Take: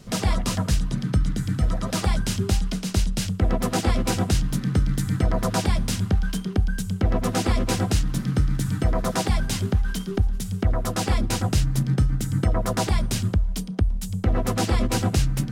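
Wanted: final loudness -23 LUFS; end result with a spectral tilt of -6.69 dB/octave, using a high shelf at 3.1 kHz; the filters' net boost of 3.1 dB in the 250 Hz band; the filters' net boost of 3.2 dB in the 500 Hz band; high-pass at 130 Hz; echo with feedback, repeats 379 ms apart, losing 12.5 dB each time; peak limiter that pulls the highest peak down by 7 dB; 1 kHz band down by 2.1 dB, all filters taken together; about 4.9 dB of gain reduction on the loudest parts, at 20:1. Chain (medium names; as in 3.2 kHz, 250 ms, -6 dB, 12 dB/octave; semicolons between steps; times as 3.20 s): high-pass 130 Hz; peaking EQ 250 Hz +4.5 dB; peaking EQ 500 Hz +4 dB; peaking EQ 1 kHz -4 dB; treble shelf 3.1 kHz -7.5 dB; compression 20:1, threshold -22 dBFS; peak limiter -19 dBFS; feedback delay 379 ms, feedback 24%, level -12.5 dB; trim +7 dB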